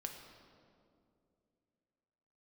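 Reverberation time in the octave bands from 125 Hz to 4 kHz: 3.0, 3.1, 2.9, 2.1, 1.6, 1.4 s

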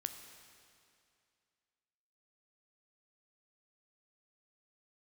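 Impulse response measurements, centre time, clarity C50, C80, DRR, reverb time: 33 ms, 8.0 dB, 9.0 dB, 7.0 dB, 2.4 s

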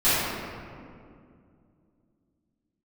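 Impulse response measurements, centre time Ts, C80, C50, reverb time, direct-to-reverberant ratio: 0.145 s, -1.0 dB, -4.5 dB, 2.3 s, -17.5 dB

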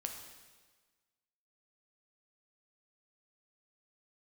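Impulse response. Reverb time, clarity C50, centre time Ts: 1.4 s, 5.5 dB, 35 ms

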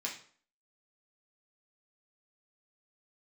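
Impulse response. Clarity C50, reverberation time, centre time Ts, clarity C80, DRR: 7.5 dB, 0.50 s, 23 ms, 12.0 dB, -3.0 dB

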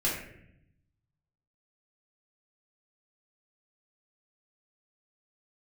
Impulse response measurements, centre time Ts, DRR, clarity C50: 50 ms, -7.0 dB, 3.0 dB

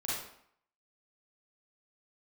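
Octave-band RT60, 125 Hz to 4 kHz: 0.60, 0.65, 0.60, 0.70, 0.60, 0.55 s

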